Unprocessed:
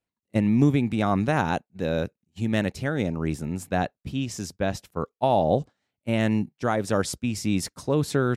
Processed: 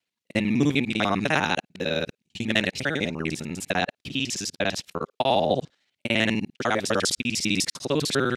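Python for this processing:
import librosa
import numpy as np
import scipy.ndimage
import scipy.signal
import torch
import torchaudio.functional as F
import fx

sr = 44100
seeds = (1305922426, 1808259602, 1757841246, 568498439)

y = fx.local_reverse(x, sr, ms=50.0)
y = fx.weighting(y, sr, curve='D')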